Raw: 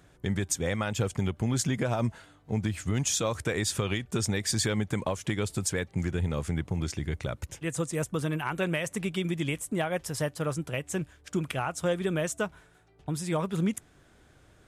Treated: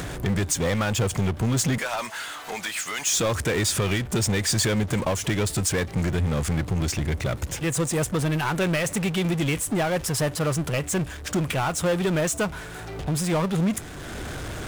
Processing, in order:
0:01.78–0:03.17: high-pass filter 1,100 Hz 12 dB per octave
upward compression, threshold −38 dBFS
power curve on the samples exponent 0.5

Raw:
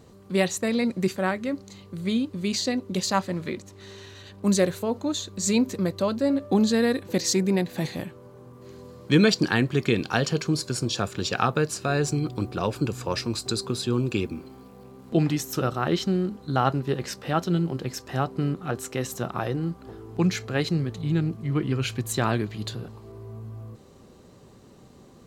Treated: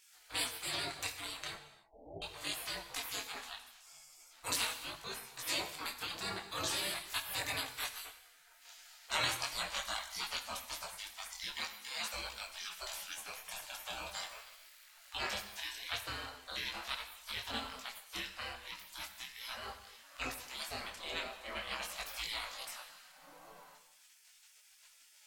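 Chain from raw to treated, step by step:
0:01.55–0:02.22: Butterworth low-pass 830 Hz 96 dB per octave
gate on every frequency bin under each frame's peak −30 dB weak
0:11.57–0:12.14: high-pass filter 320 Hz 6 dB per octave
reverb whose tail is shaped and stops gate 350 ms falling, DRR 7.5 dB
micro pitch shift up and down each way 14 cents
level +9.5 dB

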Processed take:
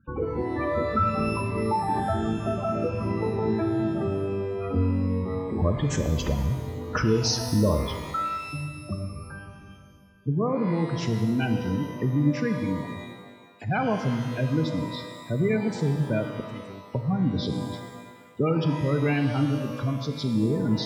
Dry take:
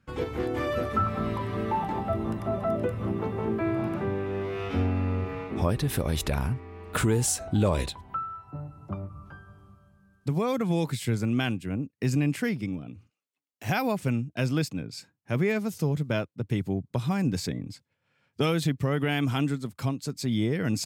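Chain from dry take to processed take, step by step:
hearing-aid frequency compression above 2,300 Hz 1.5 to 1
0:16.40–0:16.94: first-order pre-emphasis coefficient 0.9
in parallel at −3 dB: downward compressor, threshold −36 dBFS, peak gain reduction 15.5 dB
on the sum: gate on every frequency bin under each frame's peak −15 dB strong
reverb with rising layers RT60 1.5 s, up +12 semitones, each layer −8 dB, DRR 5.5 dB

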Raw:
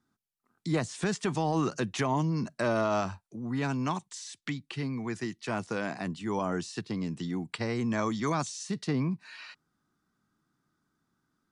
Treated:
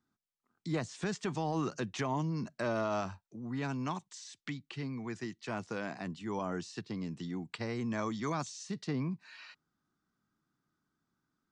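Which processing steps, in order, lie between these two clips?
low-pass filter 7,800 Hz 24 dB per octave
level −5.5 dB

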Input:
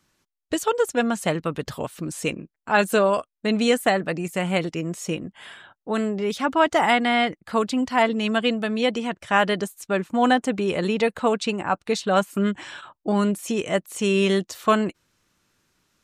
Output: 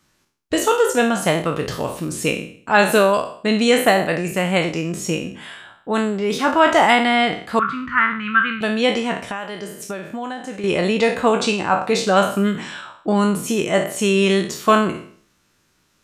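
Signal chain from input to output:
peak hold with a decay on every bin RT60 0.52 s
0:07.59–0:08.61: drawn EQ curve 150 Hz 0 dB, 740 Hz −29 dB, 1,300 Hz +13 dB, 5,700 Hz −28 dB
0:09.23–0:10.64: downward compressor 6 to 1, threshold −30 dBFS, peak gain reduction 16.5 dB
level +3.5 dB

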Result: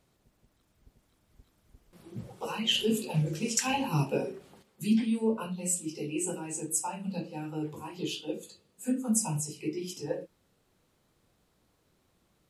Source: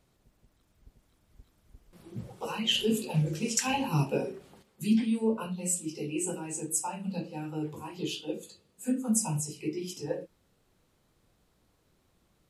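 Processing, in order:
low-shelf EQ 63 Hz −6.5 dB

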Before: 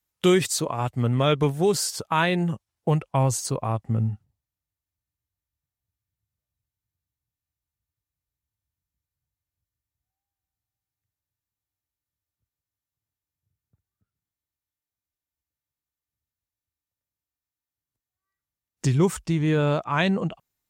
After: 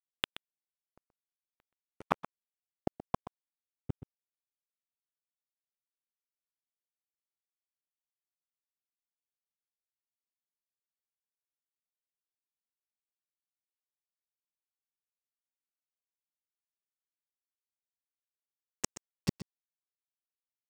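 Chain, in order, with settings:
gate with flip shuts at −20 dBFS, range −37 dB
dead-zone distortion −41.5 dBFS
single-tap delay 126 ms −14 dB
level +6.5 dB

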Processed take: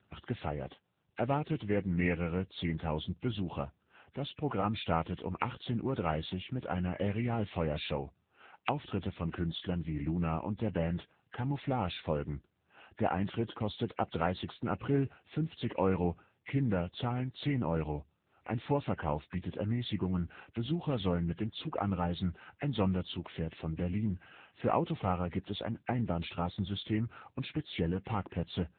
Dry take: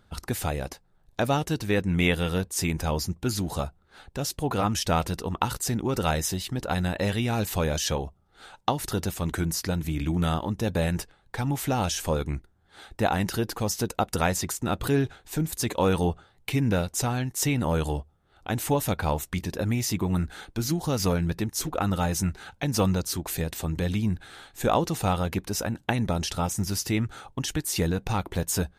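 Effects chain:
hearing-aid frequency compression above 1,500 Hz 1.5 to 1
level −6 dB
AMR narrowband 7.95 kbit/s 8,000 Hz

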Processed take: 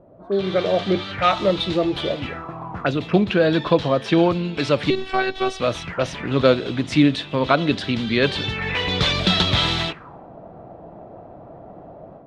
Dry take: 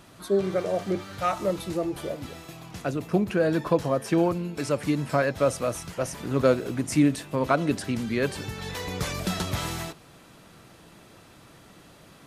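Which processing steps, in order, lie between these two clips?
automatic gain control gain up to 9 dB
0:04.90–0:05.60: phases set to zero 380 Hz
envelope-controlled low-pass 550–3,600 Hz up, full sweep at −20.5 dBFS
level −1 dB

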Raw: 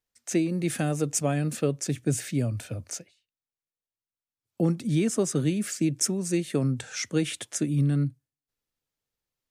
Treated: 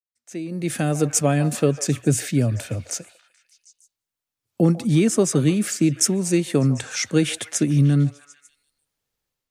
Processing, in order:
fade in at the beginning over 1.06 s
automatic gain control gain up to 7 dB
echo through a band-pass that steps 149 ms, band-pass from 820 Hz, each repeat 0.7 octaves, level −10 dB

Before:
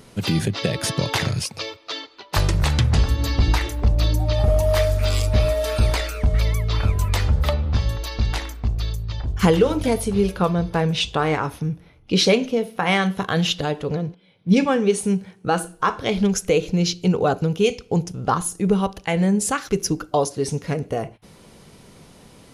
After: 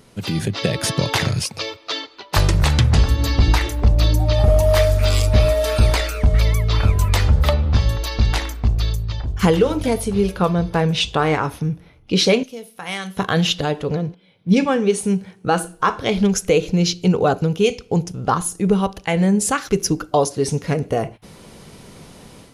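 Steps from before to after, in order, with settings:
0:12.43–0:13.17: first-order pre-emphasis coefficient 0.8
automatic gain control gain up to 8.5 dB
level −3 dB

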